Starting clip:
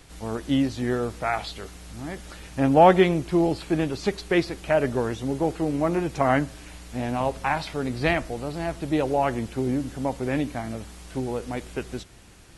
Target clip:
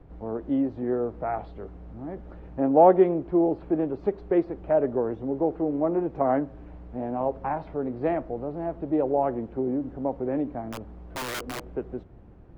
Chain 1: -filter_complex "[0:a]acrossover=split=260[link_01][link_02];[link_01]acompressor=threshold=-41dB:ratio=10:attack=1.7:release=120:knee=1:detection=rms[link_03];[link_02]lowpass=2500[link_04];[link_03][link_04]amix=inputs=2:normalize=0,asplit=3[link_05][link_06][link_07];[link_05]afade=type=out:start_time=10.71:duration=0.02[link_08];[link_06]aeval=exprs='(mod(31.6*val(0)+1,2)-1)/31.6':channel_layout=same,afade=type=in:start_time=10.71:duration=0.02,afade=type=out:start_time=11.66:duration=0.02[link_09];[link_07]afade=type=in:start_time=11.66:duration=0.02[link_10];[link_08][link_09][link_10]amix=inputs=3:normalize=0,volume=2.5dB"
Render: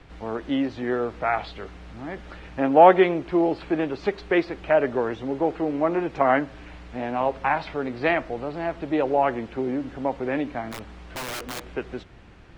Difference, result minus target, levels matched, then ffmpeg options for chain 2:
2,000 Hz band +11.0 dB
-filter_complex "[0:a]acrossover=split=260[link_01][link_02];[link_01]acompressor=threshold=-41dB:ratio=10:attack=1.7:release=120:knee=1:detection=rms[link_03];[link_02]lowpass=660[link_04];[link_03][link_04]amix=inputs=2:normalize=0,asplit=3[link_05][link_06][link_07];[link_05]afade=type=out:start_time=10.71:duration=0.02[link_08];[link_06]aeval=exprs='(mod(31.6*val(0)+1,2)-1)/31.6':channel_layout=same,afade=type=in:start_time=10.71:duration=0.02,afade=type=out:start_time=11.66:duration=0.02[link_09];[link_07]afade=type=in:start_time=11.66:duration=0.02[link_10];[link_08][link_09][link_10]amix=inputs=3:normalize=0,volume=2.5dB"

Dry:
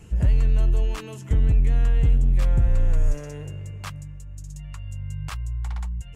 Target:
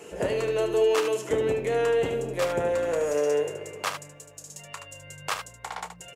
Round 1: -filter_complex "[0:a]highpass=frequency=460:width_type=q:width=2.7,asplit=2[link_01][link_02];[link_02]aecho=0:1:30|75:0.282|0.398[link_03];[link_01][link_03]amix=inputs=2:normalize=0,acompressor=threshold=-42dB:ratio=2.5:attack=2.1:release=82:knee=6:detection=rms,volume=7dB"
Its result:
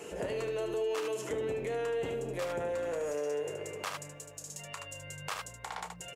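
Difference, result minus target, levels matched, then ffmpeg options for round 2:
downward compressor: peak gain reduction +12 dB
-filter_complex "[0:a]highpass=frequency=460:width_type=q:width=2.7,asplit=2[link_01][link_02];[link_02]aecho=0:1:30|75:0.282|0.398[link_03];[link_01][link_03]amix=inputs=2:normalize=0,volume=7dB"

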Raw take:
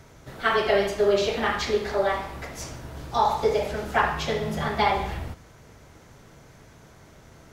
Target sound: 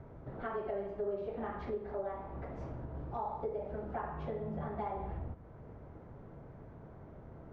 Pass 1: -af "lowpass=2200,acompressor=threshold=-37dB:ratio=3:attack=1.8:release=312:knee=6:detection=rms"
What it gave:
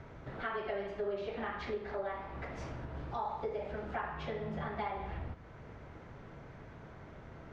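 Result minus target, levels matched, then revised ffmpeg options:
2,000 Hz band +8.0 dB
-af "lowpass=860,acompressor=threshold=-37dB:ratio=3:attack=1.8:release=312:knee=6:detection=rms"

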